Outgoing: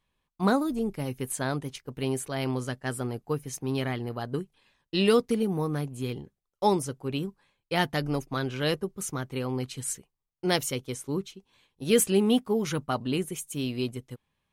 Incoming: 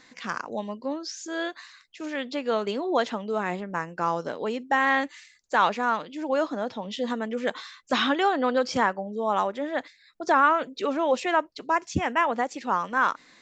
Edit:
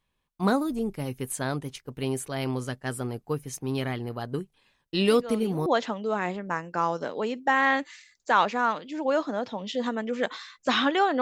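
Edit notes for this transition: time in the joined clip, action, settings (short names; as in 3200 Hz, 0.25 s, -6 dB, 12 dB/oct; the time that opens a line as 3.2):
outgoing
5.01 add incoming from 2.25 s 0.65 s -12 dB
5.66 switch to incoming from 2.9 s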